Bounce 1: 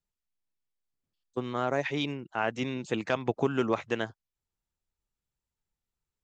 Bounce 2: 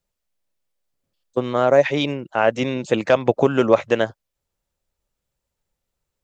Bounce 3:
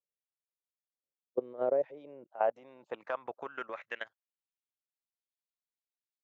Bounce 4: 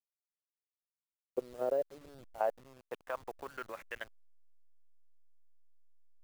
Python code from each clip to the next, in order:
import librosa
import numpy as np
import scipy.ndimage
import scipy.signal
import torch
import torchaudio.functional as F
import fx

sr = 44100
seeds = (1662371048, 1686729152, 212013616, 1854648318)

y1 = fx.peak_eq(x, sr, hz=560.0, db=10.0, octaves=0.44)
y1 = y1 * librosa.db_to_amplitude(8.5)
y2 = fx.level_steps(y1, sr, step_db=18)
y2 = fx.filter_sweep_bandpass(y2, sr, from_hz=460.0, to_hz=3900.0, start_s=1.79, end_s=4.98, q=2.2)
y2 = y2 * librosa.db_to_amplitude(-6.0)
y3 = fx.delta_hold(y2, sr, step_db=-47.5)
y3 = y3 * librosa.db_to_amplitude(-3.0)